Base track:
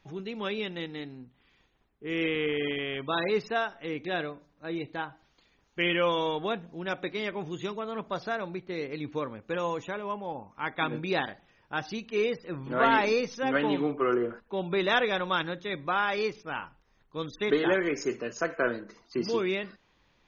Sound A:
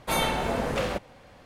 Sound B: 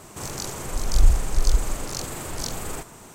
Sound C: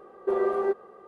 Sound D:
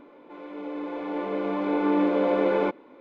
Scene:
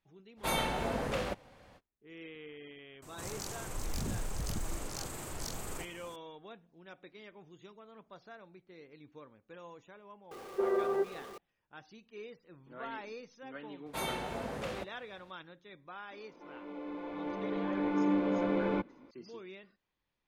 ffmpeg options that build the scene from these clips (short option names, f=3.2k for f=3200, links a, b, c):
-filter_complex "[1:a]asplit=2[a][b];[0:a]volume=-19.5dB[c];[2:a]aeval=exprs='0.0944*(abs(mod(val(0)/0.0944+3,4)-2)-1)':c=same[d];[3:a]aeval=exprs='val(0)+0.5*0.0106*sgn(val(0))':c=same[e];[b]highpass=59[f];[4:a]asubboost=boost=8.5:cutoff=180[g];[a]atrim=end=1.45,asetpts=PTS-STARTPTS,volume=-6.5dB,afade=t=in:d=0.05,afade=t=out:st=1.4:d=0.05,adelay=360[h];[d]atrim=end=3.14,asetpts=PTS-STARTPTS,volume=-9.5dB,afade=t=in:d=0.004:c=hsin,afade=t=out:st=3.136:d=0.004:c=hsin,adelay=3020[i];[e]atrim=end=1.07,asetpts=PTS-STARTPTS,volume=-6dB,afade=t=in:d=0.004:c=hsin,afade=t=out:st=1.066:d=0.004:c=hsin,adelay=10310[j];[f]atrim=end=1.45,asetpts=PTS-STARTPTS,volume=-11dB,afade=t=in:d=0.004:c=hsin,afade=t=out:st=1.446:d=0.004:c=hsin,adelay=13860[k];[g]atrim=end=3,asetpts=PTS-STARTPTS,volume=-7.5dB,afade=t=in:d=0.004:c=hsin,afade=t=out:st=2.996:d=0.004:c=hsin,adelay=16110[l];[c][h][i][j][k][l]amix=inputs=6:normalize=0"